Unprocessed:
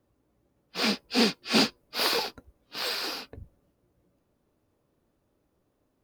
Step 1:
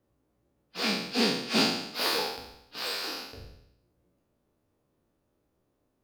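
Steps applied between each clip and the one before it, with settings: spectral trails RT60 0.81 s; gain -4.5 dB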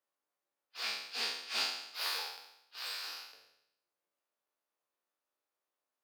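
HPF 1000 Hz 12 dB/oct; gain -7 dB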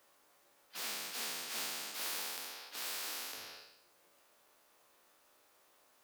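spectral compressor 4:1; gain -2.5 dB

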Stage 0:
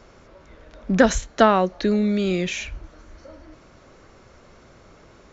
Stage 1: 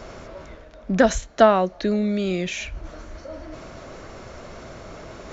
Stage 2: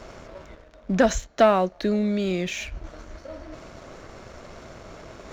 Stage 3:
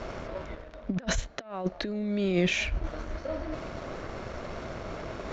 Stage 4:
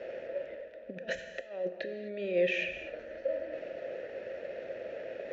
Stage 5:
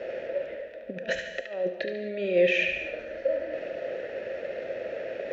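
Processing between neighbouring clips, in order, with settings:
bell 650 Hz +6.5 dB 0.24 oct; reverse; upward compressor, threshold -25 dBFS; reverse; gain -2 dB
sample leveller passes 1; gain -5 dB
negative-ratio compressor -27 dBFS, ratio -0.5; air absorption 110 m
vowel filter e; non-linear reverb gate 0.28 s flat, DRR 7.5 dB; gain +6.5 dB
narrowing echo 72 ms, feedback 47%, band-pass 2700 Hz, level -5 dB; gain +6 dB

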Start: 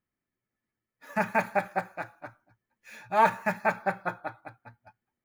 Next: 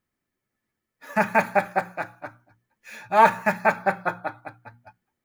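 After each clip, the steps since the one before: notches 60/120/180/240/300 Hz; gain +6 dB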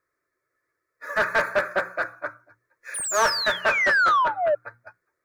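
painted sound fall, 2.94–4.55, 570–9800 Hz -23 dBFS; fixed phaser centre 810 Hz, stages 6; overdrive pedal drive 22 dB, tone 2000 Hz, clips at -6.5 dBFS; gain -4 dB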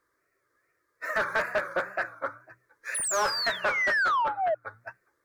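wow and flutter 130 cents; compressor 2:1, threshold -37 dBFS, peak gain reduction 11 dB; gain +4.5 dB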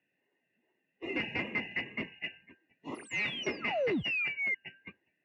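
four-band scrambler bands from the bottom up 2143; in parallel at -9.5 dB: hard clip -30 dBFS, distortion -8 dB; on the sum: BPF 210–2400 Hz; gain -5 dB

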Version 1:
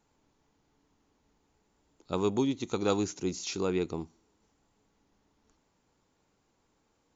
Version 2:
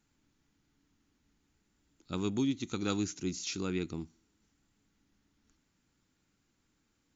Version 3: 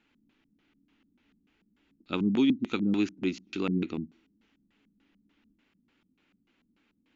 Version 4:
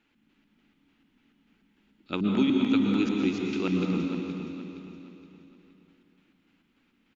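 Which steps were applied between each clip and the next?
band shelf 660 Hz -10 dB; gain -1 dB
LFO low-pass square 3.4 Hz 200–2800 Hz; resonant low shelf 180 Hz -9 dB, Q 1.5; gain +5 dB
feedback echo 0.469 s, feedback 39%, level -10 dB; plate-style reverb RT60 2.3 s, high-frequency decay 0.95×, pre-delay 0.105 s, DRR 1 dB

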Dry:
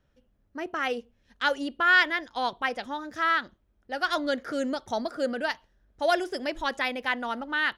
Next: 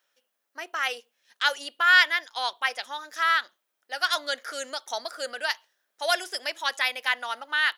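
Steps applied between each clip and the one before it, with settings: HPF 570 Hz 12 dB/oct; tilt +3.5 dB/oct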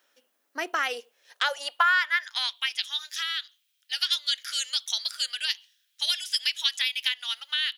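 compressor 16:1, threshold -28 dBFS, peak gain reduction 16.5 dB; high-pass sweep 260 Hz -> 3100 Hz, 0.86–2.73; gain +5.5 dB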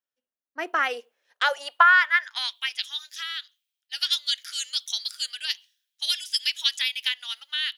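three-band expander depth 70%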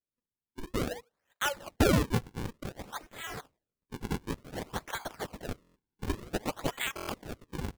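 decimation with a swept rate 40×, swing 160% 0.55 Hz; stuck buffer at 5.62/6.95, samples 1024, times 5; gain -7.5 dB

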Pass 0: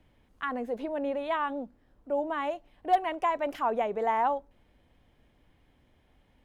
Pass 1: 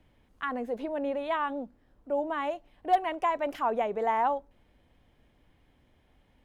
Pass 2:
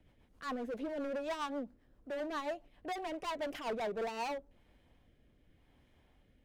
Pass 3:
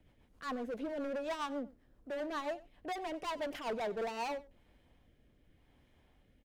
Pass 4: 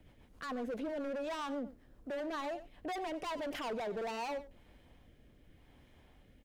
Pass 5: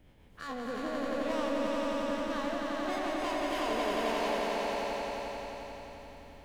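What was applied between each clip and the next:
nothing audible
overloaded stage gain 32 dB; rotary speaker horn 7.5 Hz, later 0.85 Hz, at 3.67; gain -1 dB
echo 93 ms -20.5 dB
limiter -38 dBFS, peak gain reduction 9.5 dB; gain +5.5 dB
spectral dilation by 60 ms; swelling echo 88 ms, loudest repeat 5, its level -3.5 dB; gain -3 dB

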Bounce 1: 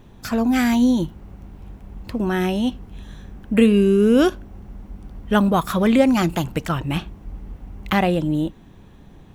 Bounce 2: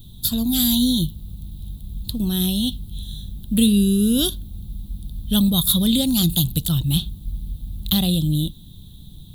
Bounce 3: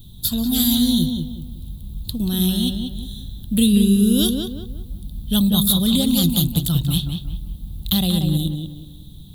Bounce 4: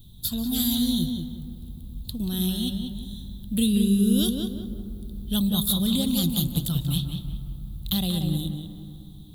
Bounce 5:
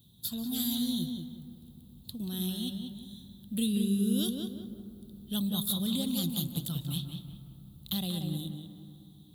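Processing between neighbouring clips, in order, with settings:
EQ curve 150 Hz 0 dB, 430 Hz -19 dB, 2300 Hz -26 dB, 3700 Hz +13 dB, 5600 Hz -7 dB, 11000 Hz +14 dB; gain +6 dB
tape echo 0.185 s, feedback 40%, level -3.5 dB, low-pass 2300 Hz
reverb RT60 3.1 s, pre-delay 0.143 s, DRR 13.5 dB; gain -6.5 dB
HPF 130 Hz 12 dB/oct; gain -7 dB

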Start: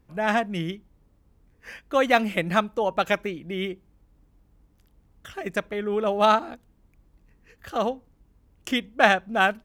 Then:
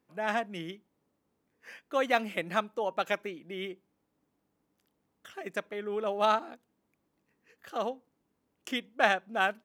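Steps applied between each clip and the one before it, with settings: HPF 240 Hz 12 dB/oct; gain -7 dB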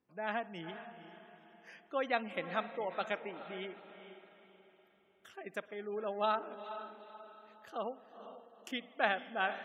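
diffused feedback echo 0.454 s, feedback 41%, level -11 dB; spring tank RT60 1.5 s, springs 54 ms, chirp 70 ms, DRR 18.5 dB; spectral gate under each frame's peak -30 dB strong; gain -6.5 dB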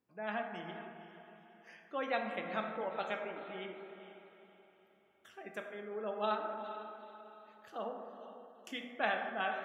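plate-style reverb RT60 1.8 s, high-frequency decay 0.35×, DRR 2.5 dB; gain -3 dB

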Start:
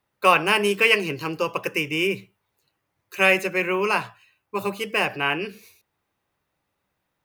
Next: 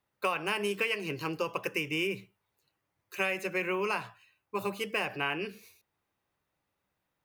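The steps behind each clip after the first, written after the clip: compressor 10:1, threshold -21 dBFS, peak gain reduction 10.5 dB; gain -5.5 dB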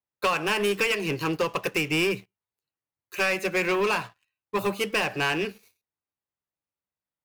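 sample leveller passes 3; upward expander 1.5:1, over -41 dBFS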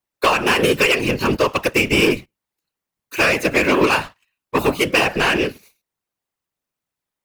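whisperiser; gain +8.5 dB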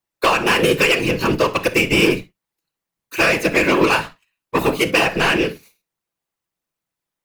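reverb, pre-delay 6 ms, DRR 10 dB

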